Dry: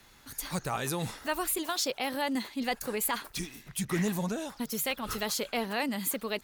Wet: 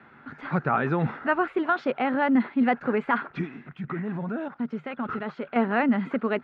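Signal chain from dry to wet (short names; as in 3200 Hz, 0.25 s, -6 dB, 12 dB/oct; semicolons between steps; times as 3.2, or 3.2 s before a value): 3.69–5.56 level quantiser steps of 13 dB; speaker cabinet 130–2200 Hz, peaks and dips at 150 Hz +7 dB, 240 Hz +8 dB, 380 Hz +4 dB, 730 Hz +3 dB, 1400 Hz +9 dB; gain +5.5 dB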